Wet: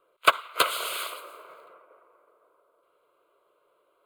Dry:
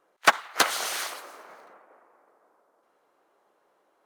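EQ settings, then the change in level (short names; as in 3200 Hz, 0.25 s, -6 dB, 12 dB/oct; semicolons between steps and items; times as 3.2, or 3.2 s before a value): fixed phaser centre 1200 Hz, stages 8; +2.5 dB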